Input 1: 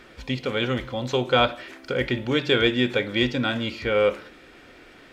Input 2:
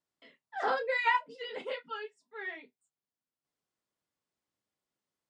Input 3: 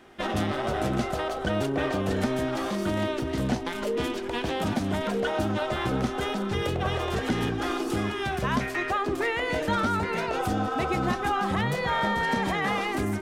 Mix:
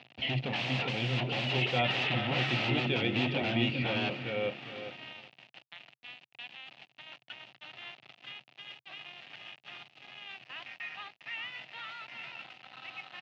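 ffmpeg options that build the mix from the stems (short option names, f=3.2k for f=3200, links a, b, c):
-filter_complex "[0:a]lowshelf=f=340:g=4.5,volume=-2dB,asplit=2[a][b];[b]volume=-11dB[c];[1:a]equalizer=f=2.9k:t=o:w=1.3:g=13.5,aeval=exprs='0.15*sin(PI/2*3.98*val(0)/0.15)':c=same,volume=1dB,asplit=2[d][e];[2:a]highpass=f=1.2k:w=0.5412,highpass=f=1.2k:w=1.3066,adelay=1650,volume=0.5dB,asplit=2[f][g];[g]volume=-10.5dB[h];[e]apad=whole_len=655590[i];[f][i]sidechaingate=range=-27dB:threshold=-50dB:ratio=16:detection=peak[j];[a][d]amix=inputs=2:normalize=0,aeval=exprs='0.0631*(abs(mod(val(0)/0.0631+3,4)-2)-1)':c=same,alimiter=level_in=4dB:limit=-24dB:level=0:latency=1:release=150,volume=-4dB,volume=0dB[k];[c][h]amix=inputs=2:normalize=0,aecho=0:1:403|806|1209|1612:1|0.31|0.0961|0.0298[l];[j][k][l]amix=inputs=3:normalize=0,aeval=exprs='val(0)*gte(abs(val(0)),0.00794)':c=same,highpass=f=110:w=0.5412,highpass=f=110:w=1.3066,equalizer=f=130:t=q:w=4:g=8,equalizer=f=450:t=q:w=4:g=-6,equalizer=f=720:t=q:w=4:g=6,equalizer=f=1.1k:t=q:w=4:g=-7,equalizer=f=1.5k:t=q:w=4:g=-8,equalizer=f=2.7k:t=q:w=4:g=9,lowpass=f=3.7k:w=0.5412,lowpass=f=3.7k:w=1.3066"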